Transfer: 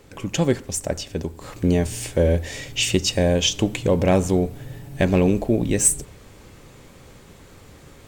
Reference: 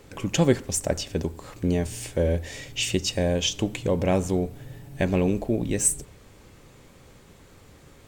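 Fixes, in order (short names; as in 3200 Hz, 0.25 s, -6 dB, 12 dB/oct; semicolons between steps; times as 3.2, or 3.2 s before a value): clip repair -8 dBFS; gain 0 dB, from 1.41 s -5 dB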